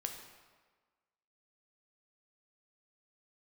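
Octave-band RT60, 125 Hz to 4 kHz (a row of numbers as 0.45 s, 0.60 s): 1.2 s, 1.3 s, 1.4 s, 1.5 s, 1.3 s, 1.1 s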